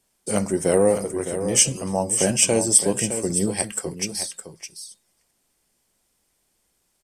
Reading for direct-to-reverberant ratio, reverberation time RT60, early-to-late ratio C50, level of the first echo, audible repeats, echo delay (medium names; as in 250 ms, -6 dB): no reverb, no reverb, no reverb, -9.5 dB, 1, 612 ms